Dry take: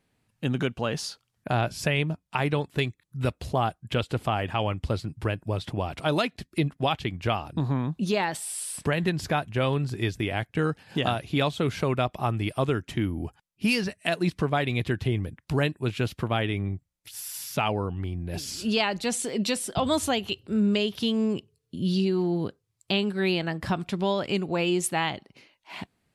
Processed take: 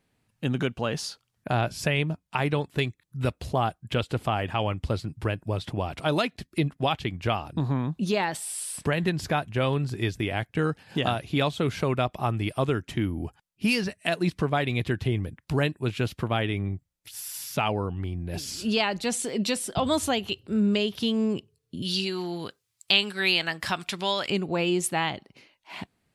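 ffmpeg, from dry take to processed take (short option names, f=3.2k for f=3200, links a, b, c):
-filter_complex "[0:a]asettb=1/sr,asplit=3[a][b][c];[a]atrim=end=21.824[d];[b]atrim=start=21.82:end=24.3,asetpts=PTS-STARTPTS,afade=t=in:d=0.004:c=qsin,afade=t=out:st=2.476:d=0.004:c=qsin,tiltshelf=f=830:g=-9.5[e];[c]atrim=start=24.296[f];[d][e]acrossfade=d=0.004:c1=hsin:c2=qsin[g];[g][f]acrossfade=d=0.004:c1=qsin:c2=hsin"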